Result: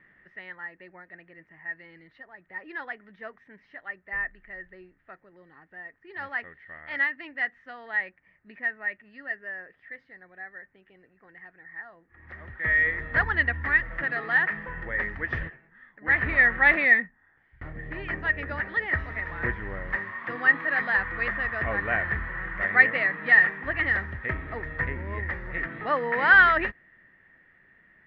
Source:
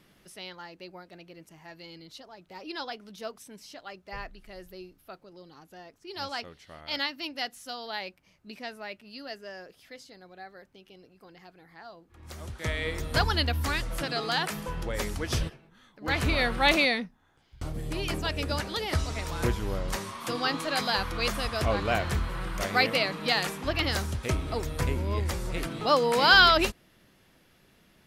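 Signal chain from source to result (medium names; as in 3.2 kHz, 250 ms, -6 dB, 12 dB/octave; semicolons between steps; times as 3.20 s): four-pole ladder low-pass 1.9 kHz, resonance 90%; trim +8 dB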